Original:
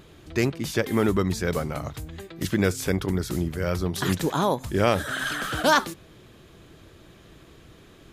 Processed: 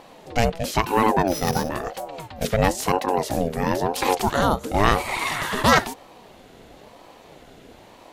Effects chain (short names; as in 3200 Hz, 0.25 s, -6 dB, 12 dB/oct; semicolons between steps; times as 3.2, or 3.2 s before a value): 1.27–1.69 sample sorter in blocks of 8 samples; ring modulator with a swept carrier 490 Hz, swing 35%, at 0.99 Hz; gain +6 dB